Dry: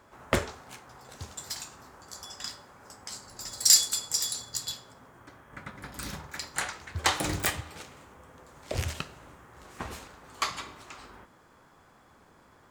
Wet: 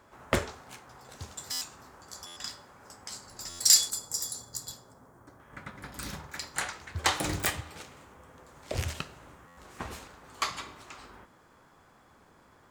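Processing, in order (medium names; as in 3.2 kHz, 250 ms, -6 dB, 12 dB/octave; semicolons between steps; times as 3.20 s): 3.90–5.40 s: peaking EQ 2.8 kHz -14 dB 1.4 oct; buffer glitch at 1.51/2.26/3.49/9.47 s, samples 512, times 8; trim -1 dB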